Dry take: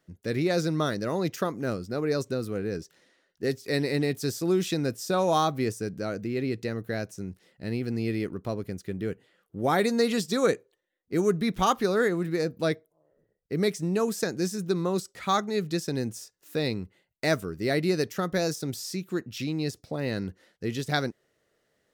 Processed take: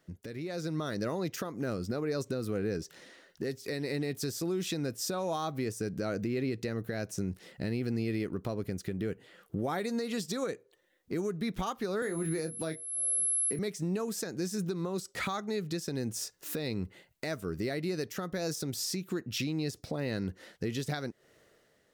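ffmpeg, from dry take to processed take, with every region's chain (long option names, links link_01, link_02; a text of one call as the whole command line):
ffmpeg -i in.wav -filter_complex "[0:a]asettb=1/sr,asplit=3[link_01][link_02][link_03];[link_01]atrim=end=12.024[link_04];[link_02]atrim=start=12.02:end=13.59,asetpts=PTS-STARTPTS,afade=type=in:duration=0.004:curve=qsin,afade=type=out:start_time=1.566:duration=0.004:curve=qsin,highpass=frequency=120:width=0.5412,highpass=frequency=120:width=1.3066,asplit=2[link_05][link_06];[link_06]adelay=25,volume=-7.5dB[link_07];[link_05][link_07]amix=inputs=2:normalize=0,atrim=end_sample=69237,aeval=exprs='val(0)+0.0141*sin(2*PI*11000*n/s)':channel_layout=same[link_08];[link_03]atrim=start=13.586[link_09];[link_04][link_08]acrossfade=duration=0.004:curve1=hsin:curve2=qsin[link_10];[link_10][link_09]acrossfade=duration=0.004:curve1=qsin:curve2=hsin,acompressor=threshold=-37dB:ratio=4,alimiter=level_in=11dB:limit=-24dB:level=0:latency=1:release=436,volume=-11dB,dynaudnorm=framelen=130:gausssize=9:maxgain=8.5dB,volume=2.5dB" out.wav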